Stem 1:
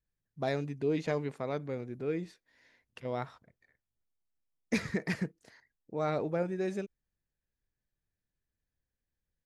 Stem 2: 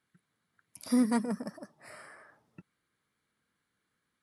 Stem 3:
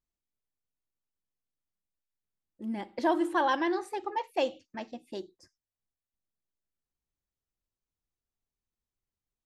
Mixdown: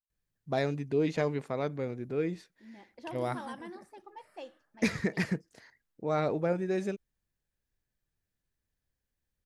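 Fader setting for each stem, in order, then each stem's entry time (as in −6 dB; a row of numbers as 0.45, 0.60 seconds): +2.5, −17.5, −16.5 decibels; 0.10, 2.35, 0.00 seconds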